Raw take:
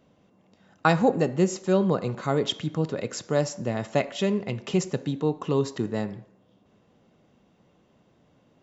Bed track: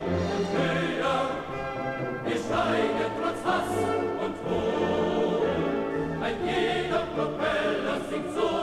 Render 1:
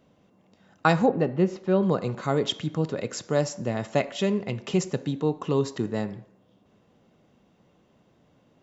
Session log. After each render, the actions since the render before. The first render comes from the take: 1.06–1.83 s: distance through air 240 m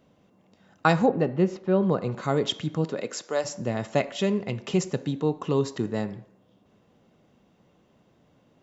1.57–2.12 s: treble shelf 4.7 kHz -10.5 dB; 2.84–3.44 s: high-pass 140 Hz -> 580 Hz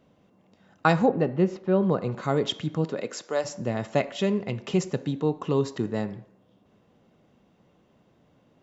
treble shelf 5.8 kHz -5 dB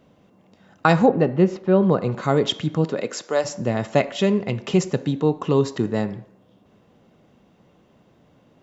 trim +5.5 dB; peak limiter -2 dBFS, peak gain reduction 3 dB

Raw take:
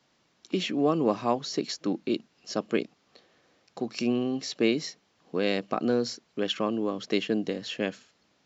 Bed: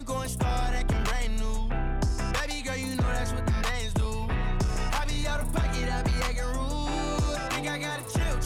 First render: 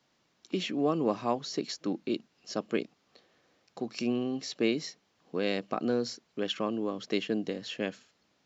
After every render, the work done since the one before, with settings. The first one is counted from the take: trim -3.5 dB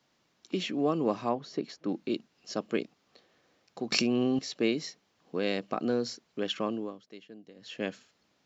1.29–1.89 s: low-pass 1.7 kHz 6 dB/octave; 3.92–4.39 s: level flattener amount 100%; 6.71–7.86 s: dip -18.5 dB, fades 0.31 s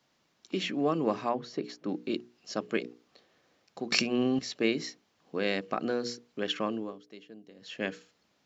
hum notches 60/120/180/240/300/360/420/480 Hz; dynamic bell 1.8 kHz, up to +5 dB, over -49 dBFS, Q 1.5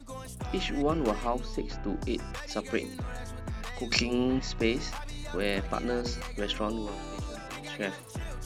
add bed -10.5 dB

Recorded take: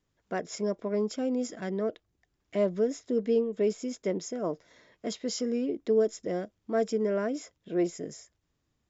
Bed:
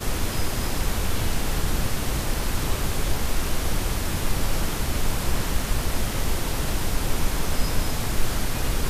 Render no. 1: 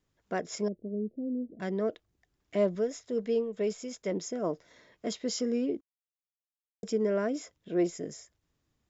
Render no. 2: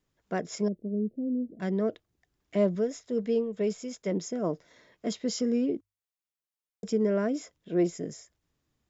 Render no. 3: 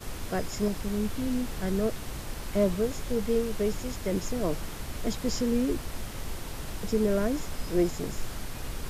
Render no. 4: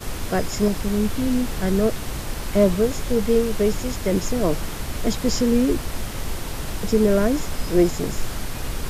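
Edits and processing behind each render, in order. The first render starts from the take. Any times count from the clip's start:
0.68–1.60 s: Gaussian low-pass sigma 22 samples; 2.75–4.12 s: peaking EQ 300 Hz -9.5 dB; 5.81–6.83 s: mute
hum notches 50/100 Hz; dynamic bell 160 Hz, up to +6 dB, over -44 dBFS, Q 0.87
add bed -11.5 dB
trim +8 dB

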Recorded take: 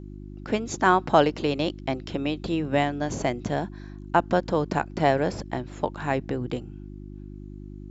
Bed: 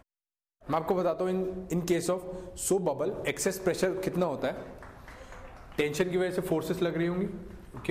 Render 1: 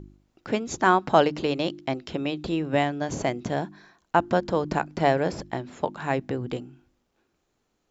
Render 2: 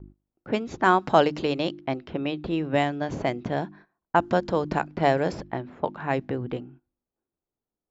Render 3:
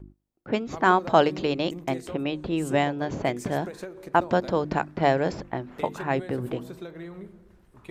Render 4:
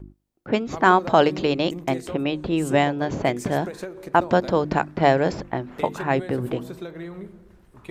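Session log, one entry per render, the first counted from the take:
de-hum 50 Hz, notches 7
level-controlled noise filter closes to 1 kHz, open at -18 dBFS; gate -48 dBFS, range -16 dB
add bed -10.5 dB
trim +4 dB; peak limiter -3 dBFS, peak gain reduction 3 dB

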